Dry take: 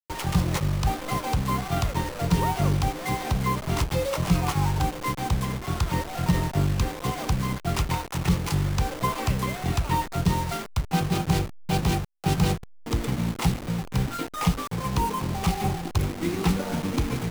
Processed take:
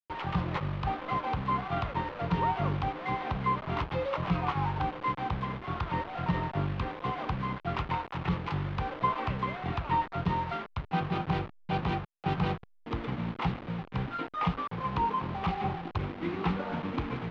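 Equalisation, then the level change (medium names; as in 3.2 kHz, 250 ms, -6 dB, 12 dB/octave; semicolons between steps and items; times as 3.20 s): low-pass 3.4 kHz 24 dB/octave; dynamic bell 1.1 kHz, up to +6 dB, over -41 dBFS, Q 1.2; bass shelf 64 Hz -10 dB; -6.0 dB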